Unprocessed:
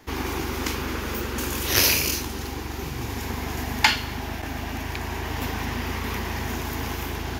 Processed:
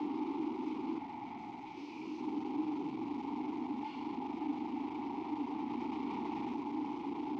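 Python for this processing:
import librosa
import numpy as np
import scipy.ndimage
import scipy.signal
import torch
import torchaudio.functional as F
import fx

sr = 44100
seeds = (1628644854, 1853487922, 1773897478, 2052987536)

y = np.sign(x) * np.sqrt(np.mean(np.square(x)))
y = scipy.signal.sosfilt(scipy.signal.butter(2, 150.0, 'highpass', fs=sr, output='sos'), y)
y = fx.peak_eq(y, sr, hz=2200.0, db=-12.0, octaves=0.83)
y = fx.ring_mod(y, sr, carrier_hz=470.0, at=(0.98, 1.75), fade=0.02)
y = fx.vowel_filter(y, sr, vowel='u')
y = fx.air_absorb(y, sr, metres=180.0)
y = fx.env_flatten(y, sr, amount_pct=70, at=(5.7, 6.54))
y = y * librosa.db_to_amplitude(3.0)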